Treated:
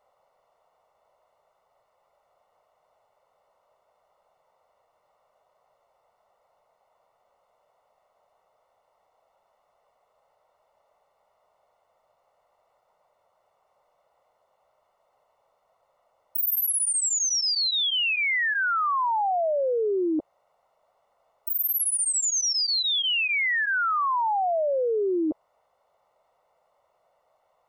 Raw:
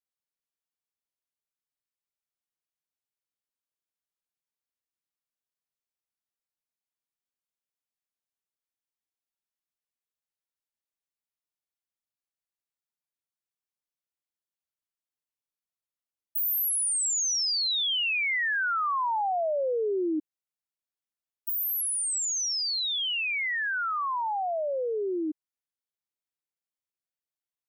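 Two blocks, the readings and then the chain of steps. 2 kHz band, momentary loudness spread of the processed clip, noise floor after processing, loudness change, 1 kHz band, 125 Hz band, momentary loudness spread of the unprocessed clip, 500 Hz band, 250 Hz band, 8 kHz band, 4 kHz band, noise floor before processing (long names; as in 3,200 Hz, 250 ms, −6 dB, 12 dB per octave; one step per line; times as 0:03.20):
+3.5 dB, 5 LU, −71 dBFS, +3.0 dB, +4.0 dB, can't be measured, 7 LU, +4.0 dB, +4.0 dB, +3.0 dB, +3.5 dB, below −85 dBFS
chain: Savitzky-Golay smoothing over 65 samples
low shelf with overshoot 420 Hz −12 dB, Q 3
envelope flattener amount 100%
level −4.5 dB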